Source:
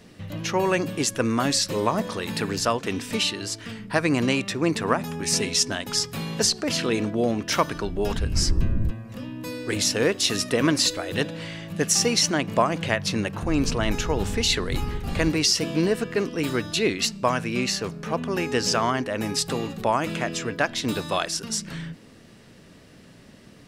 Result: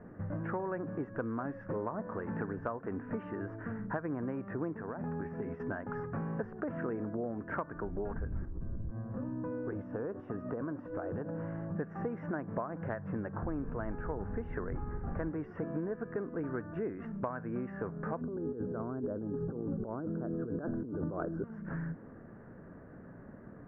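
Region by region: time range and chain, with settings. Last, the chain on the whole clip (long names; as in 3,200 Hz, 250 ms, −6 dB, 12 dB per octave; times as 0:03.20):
0:04.80–0:05.60: dynamic equaliser 1,200 Hz, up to −5 dB, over −37 dBFS, Q 1.7 + downward compressor 10 to 1, threshold −28 dBFS
0:08.45–0:11.76: parametric band 2,000 Hz −9 dB 0.76 octaves + downward compressor 4 to 1, threshold −29 dBFS
0:18.21–0:21.44: Chebyshev band-stop filter 1,500–4,300 Hz, order 3 + low shelf with overshoot 580 Hz +10 dB, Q 1.5 + compressor whose output falls as the input rises −26 dBFS
whole clip: elliptic low-pass filter 1,600 Hz, stop band 60 dB; downward compressor 6 to 1, threshold −34 dBFS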